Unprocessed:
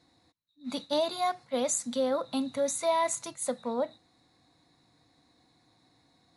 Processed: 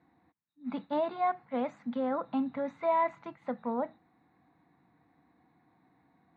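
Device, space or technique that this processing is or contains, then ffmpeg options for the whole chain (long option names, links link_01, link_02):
bass cabinet: -af "highpass=71,equalizer=frequency=110:width_type=q:width=4:gain=-7,equalizer=frequency=190:width_type=q:width=4:gain=5,equalizer=frequency=550:width_type=q:width=4:gain=-7,equalizer=frequency=820:width_type=q:width=4:gain=3,lowpass=frequency=2200:width=0.5412,lowpass=frequency=2200:width=1.3066"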